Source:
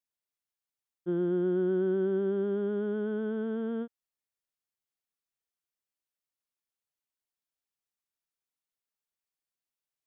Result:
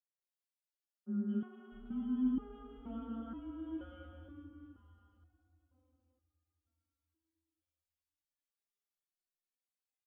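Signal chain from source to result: frequency shift -140 Hz; bass shelf 69 Hz -8.5 dB; three bands offset in time mids, highs, lows 210/650 ms, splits 190/1300 Hz; algorithmic reverb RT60 4.5 s, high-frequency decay 0.65×, pre-delay 65 ms, DRR 3.5 dB; resonator arpeggio 2.1 Hz 180–410 Hz; trim +5.5 dB

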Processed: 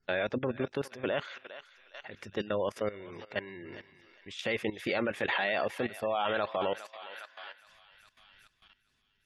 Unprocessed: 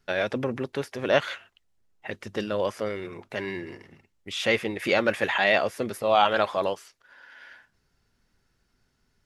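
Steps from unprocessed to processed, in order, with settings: thinning echo 409 ms, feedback 67%, high-pass 1.1 kHz, level -11.5 dB; spectral gate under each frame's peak -30 dB strong; level held to a coarse grid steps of 15 dB

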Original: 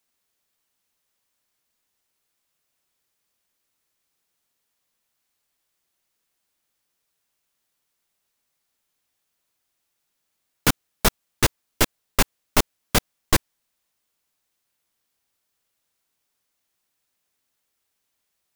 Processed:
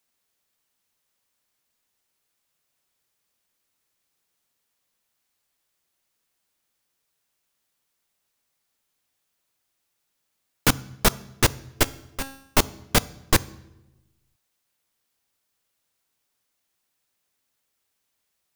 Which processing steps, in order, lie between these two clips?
11.83–12.57 s: feedback comb 270 Hz, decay 0.66 s, mix 80%; on a send: reverberation RT60 1.0 s, pre-delay 3 ms, DRR 19 dB

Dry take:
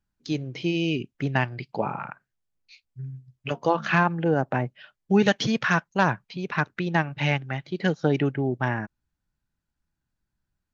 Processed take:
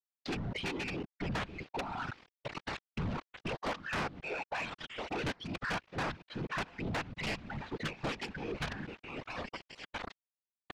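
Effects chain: rattle on loud lows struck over -25 dBFS, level -14 dBFS; 4.20–5.24 s: high-pass 830 Hz 12 dB/octave; feedback delay 661 ms, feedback 56%, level -20 dB; companded quantiser 2-bit; reverb removal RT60 2 s; level rider gain up to 8.5 dB; whisper effect; compression 3:1, threshold -27 dBFS, peak gain reduction 14 dB; Bessel low-pass 3.1 kHz, order 4; saturation -28 dBFS, distortion -9 dB; gate -55 dBFS, range -12 dB; trim -2.5 dB

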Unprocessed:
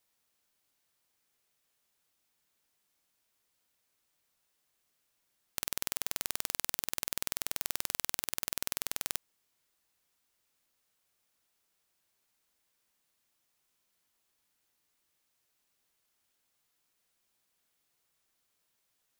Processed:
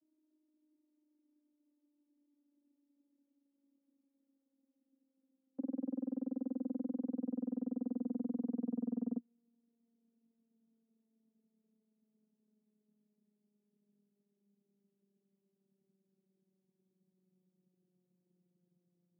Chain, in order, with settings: vocoder on a note that slides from D#4, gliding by -10 st; four-pole ladder low-pass 400 Hz, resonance 25%; trim +11.5 dB

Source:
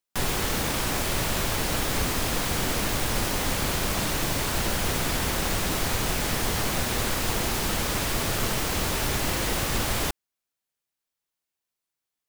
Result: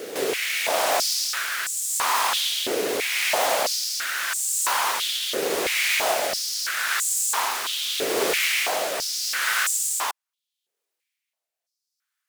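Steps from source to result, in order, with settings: rotary cabinet horn 0.8 Hz; reverse echo 510 ms -12 dB; step-sequenced high-pass 3 Hz 430–7600 Hz; trim +4 dB

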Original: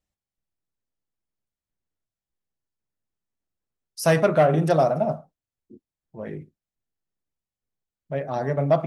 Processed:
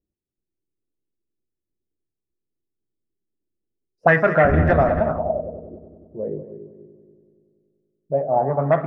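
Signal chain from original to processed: 4.44–5.00 s: octave divider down 1 oct, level +3 dB; multi-head delay 95 ms, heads second and third, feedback 51%, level -13 dB; touch-sensitive low-pass 360–1800 Hz up, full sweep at -16 dBFS

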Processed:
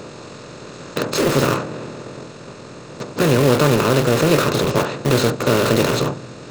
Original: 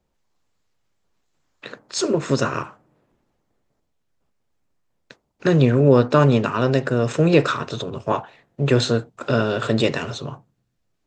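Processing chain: spectral levelling over time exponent 0.4; in parallel at -5 dB: integer overflow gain 12 dB; on the sum: tempo 1.7×; trim -3.5 dB

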